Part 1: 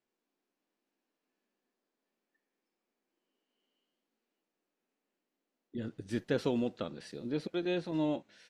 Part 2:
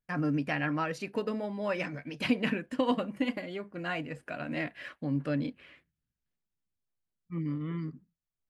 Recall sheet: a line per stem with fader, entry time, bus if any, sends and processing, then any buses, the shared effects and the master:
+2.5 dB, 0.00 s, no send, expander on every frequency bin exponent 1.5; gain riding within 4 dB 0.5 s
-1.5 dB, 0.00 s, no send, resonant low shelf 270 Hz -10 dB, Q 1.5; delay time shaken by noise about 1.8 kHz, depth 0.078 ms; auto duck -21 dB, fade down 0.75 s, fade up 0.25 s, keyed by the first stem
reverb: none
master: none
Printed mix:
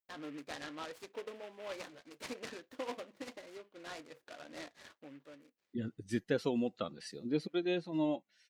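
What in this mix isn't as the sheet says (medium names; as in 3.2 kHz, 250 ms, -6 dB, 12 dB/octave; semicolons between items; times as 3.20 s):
stem 2 -1.5 dB -> -12.5 dB; master: extra bass shelf 85 Hz -11 dB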